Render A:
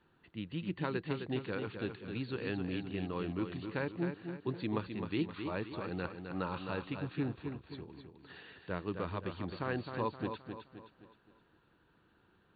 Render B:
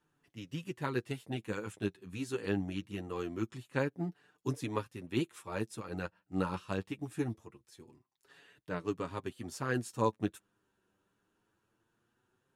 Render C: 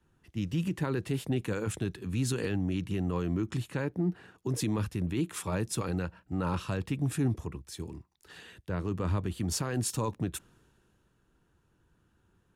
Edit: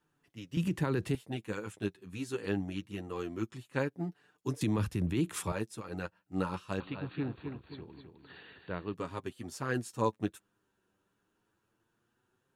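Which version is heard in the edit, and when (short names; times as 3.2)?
B
0.57–1.15 from C
4.61–5.52 from C
6.8–8.94 from A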